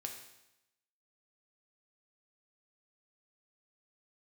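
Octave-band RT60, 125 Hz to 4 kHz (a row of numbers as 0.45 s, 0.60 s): 0.90 s, 0.90 s, 0.90 s, 0.90 s, 0.90 s, 0.90 s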